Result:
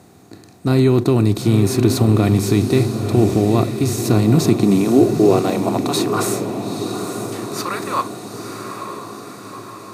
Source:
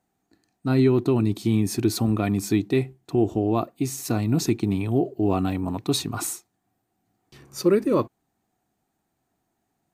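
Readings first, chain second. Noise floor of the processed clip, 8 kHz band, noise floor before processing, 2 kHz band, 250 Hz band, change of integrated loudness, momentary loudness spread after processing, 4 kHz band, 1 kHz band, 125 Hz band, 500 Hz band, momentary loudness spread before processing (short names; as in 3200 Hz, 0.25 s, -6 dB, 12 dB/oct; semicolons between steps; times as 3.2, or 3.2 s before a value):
-44 dBFS, +6.0 dB, -77 dBFS, +7.5 dB, +7.0 dB, +7.0 dB, 16 LU, +6.5 dB, +9.0 dB, +9.0 dB, +7.0 dB, 8 LU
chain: per-bin compression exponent 0.6; high-pass sweep 85 Hz -> 1100 Hz, 3.99–6.18; diffused feedback echo 0.913 s, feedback 59%, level -7.5 dB; gain +1.5 dB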